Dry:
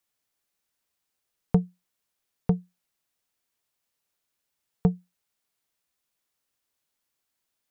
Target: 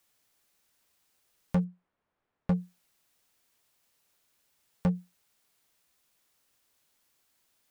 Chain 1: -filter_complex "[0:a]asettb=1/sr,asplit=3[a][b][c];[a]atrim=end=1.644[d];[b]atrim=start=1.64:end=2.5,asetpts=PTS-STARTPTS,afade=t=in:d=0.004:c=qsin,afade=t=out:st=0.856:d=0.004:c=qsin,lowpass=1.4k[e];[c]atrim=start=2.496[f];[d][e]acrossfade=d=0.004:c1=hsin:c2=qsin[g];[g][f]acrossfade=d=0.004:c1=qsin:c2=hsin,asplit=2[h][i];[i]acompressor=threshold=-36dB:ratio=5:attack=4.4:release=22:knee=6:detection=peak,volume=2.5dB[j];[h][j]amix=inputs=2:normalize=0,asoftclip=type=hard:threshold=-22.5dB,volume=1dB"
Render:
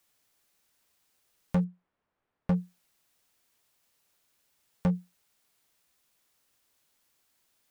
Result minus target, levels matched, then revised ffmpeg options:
compressor: peak gain reduction -8.5 dB
-filter_complex "[0:a]asettb=1/sr,asplit=3[a][b][c];[a]atrim=end=1.644[d];[b]atrim=start=1.64:end=2.5,asetpts=PTS-STARTPTS,afade=t=in:d=0.004:c=qsin,afade=t=out:st=0.856:d=0.004:c=qsin,lowpass=1.4k[e];[c]atrim=start=2.496[f];[d][e]acrossfade=d=0.004:c1=hsin:c2=qsin[g];[g][f]acrossfade=d=0.004:c1=qsin:c2=hsin,asplit=2[h][i];[i]acompressor=threshold=-46.5dB:ratio=5:attack=4.4:release=22:knee=6:detection=peak,volume=2.5dB[j];[h][j]amix=inputs=2:normalize=0,asoftclip=type=hard:threshold=-22.5dB,volume=1dB"

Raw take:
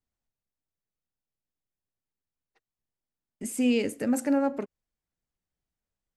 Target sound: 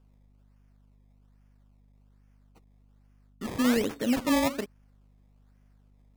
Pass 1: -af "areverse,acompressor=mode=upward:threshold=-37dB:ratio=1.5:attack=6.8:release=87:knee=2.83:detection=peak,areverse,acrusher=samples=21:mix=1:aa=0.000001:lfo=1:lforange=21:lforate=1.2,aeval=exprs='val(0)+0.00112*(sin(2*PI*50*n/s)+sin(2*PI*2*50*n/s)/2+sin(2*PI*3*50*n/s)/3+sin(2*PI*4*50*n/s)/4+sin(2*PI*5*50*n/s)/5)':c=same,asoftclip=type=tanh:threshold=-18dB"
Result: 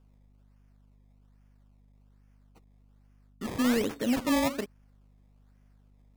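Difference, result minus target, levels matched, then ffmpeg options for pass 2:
soft clip: distortion +18 dB
-af "areverse,acompressor=mode=upward:threshold=-37dB:ratio=1.5:attack=6.8:release=87:knee=2.83:detection=peak,areverse,acrusher=samples=21:mix=1:aa=0.000001:lfo=1:lforange=21:lforate=1.2,aeval=exprs='val(0)+0.00112*(sin(2*PI*50*n/s)+sin(2*PI*2*50*n/s)/2+sin(2*PI*3*50*n/s)/3+sin(2*PI*4*50*n/s)/4+sin(2*PI*5*50*n/s)/5)':c=same,asoftclip=type=tanh:threshold=-8dB"

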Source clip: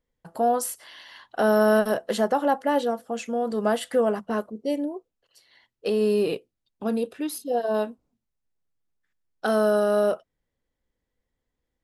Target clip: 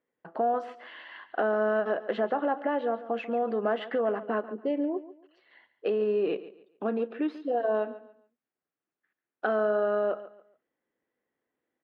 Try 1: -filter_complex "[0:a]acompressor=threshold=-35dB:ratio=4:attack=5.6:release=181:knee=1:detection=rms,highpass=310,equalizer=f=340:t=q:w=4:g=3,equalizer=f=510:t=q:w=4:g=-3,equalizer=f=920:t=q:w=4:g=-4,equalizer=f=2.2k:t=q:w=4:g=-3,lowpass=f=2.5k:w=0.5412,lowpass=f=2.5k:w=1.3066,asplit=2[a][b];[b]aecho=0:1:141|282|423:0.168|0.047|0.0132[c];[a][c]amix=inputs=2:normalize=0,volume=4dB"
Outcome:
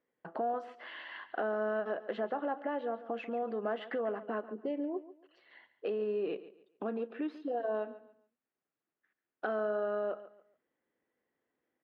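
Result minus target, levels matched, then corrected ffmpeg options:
compressor: peak gain reduction +7 dB
-filter_complex "[0:a]acompressor=threshold=-25.5dB:ratio=4:attack=5.6:release=181:knee=1:detection=rms,highpass=310,equalizer=f=340:t=q:w=4:g=3,equalizer=f=510:t=q:w=4:g=-3,equalizer=f=920:t=q:w=4:g=-4,equalizer=f=2.2k:t=q:w=4:g=-3,lowpass=f=2.5k:w=0.5412,lowpass=f=2.5k:w=1.3066,asplit=2[a][b];[b]aecho=0:1:141|282|423:0.168|0.047|0.0132[c];[a][c]amix=inputs=2:normalize=0,volume=4dB"

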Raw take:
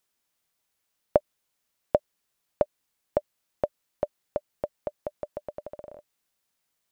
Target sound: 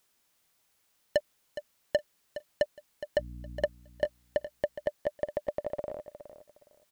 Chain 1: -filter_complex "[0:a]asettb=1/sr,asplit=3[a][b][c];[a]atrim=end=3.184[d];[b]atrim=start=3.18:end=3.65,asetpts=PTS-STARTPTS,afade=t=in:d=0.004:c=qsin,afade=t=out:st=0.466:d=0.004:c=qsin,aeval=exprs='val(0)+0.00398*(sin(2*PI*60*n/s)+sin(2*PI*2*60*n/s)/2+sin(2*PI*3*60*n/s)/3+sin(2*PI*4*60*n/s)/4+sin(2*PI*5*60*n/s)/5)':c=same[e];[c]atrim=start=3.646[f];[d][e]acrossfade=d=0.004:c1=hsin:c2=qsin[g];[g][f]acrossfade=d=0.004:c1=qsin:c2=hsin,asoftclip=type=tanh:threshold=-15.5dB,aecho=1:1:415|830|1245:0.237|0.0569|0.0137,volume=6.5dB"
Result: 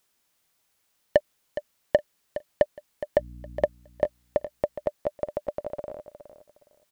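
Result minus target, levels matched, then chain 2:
soft clip: distortion -7 dB
-filter_complex "[0:a]asettb=1/sr,asplit=3[a][b][c];[a]atrim=end=3.184[d];[b]atrim=start=3.18:end=3.65,asetpts=PTS-STARTPTS,afade=t=in:d=0.004:c=qsin,afade=t=out:st=0.466:d=0.004:c=qsin,aeval=exprs='val(0)+0.00398*(sin(2*PI*60*n/s)+sin(2*PI*2*60*n/s)/2+sin(2*PI*3*60*n/s)/3+sin(2*PI*4*60*n/s)/4+sin(2*PI*5*60*n/s)/5)':c=same[e];[c]atrim=start=3.646[f];[d][e]acrossfade=d=0.004:c1=hsin:c2=qsin[g];[g][f]acrossfade=d=0.004:c1=qsin:c2=hsin,asoftclip=type=tanh:threshold=-25.5dB,aecho=1:1:415|830|1245:0.237|0.0569|0.0137,volume=6.5dB"

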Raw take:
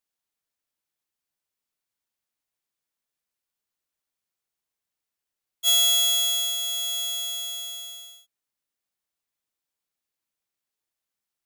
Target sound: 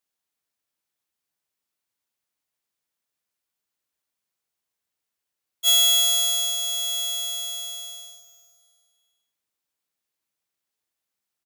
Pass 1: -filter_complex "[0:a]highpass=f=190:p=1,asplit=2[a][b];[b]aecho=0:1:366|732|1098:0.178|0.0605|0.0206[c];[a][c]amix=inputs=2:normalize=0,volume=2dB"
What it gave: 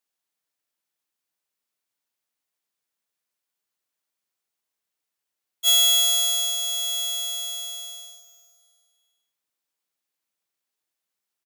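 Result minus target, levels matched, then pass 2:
125 Hz band -5.0 dB
-filter_complex "[0:a]highpass=f=54:p=1,asplit=2[a][b];[b]aecho=0:1:366|732|1098:0.178|0.0605|0.0206[c];[a][c]amix=inputs=2:normalize=0,volume=2dB"

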